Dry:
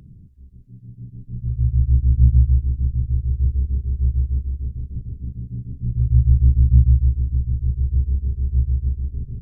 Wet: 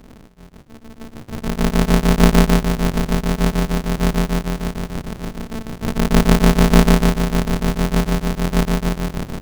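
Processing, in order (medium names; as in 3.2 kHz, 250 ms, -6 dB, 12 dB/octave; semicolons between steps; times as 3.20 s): shuffle delay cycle 849 ms, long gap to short 1.5:1, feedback 37%, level -18 dB; polarity switched at an audio rate 110 Hz; trim +1 dB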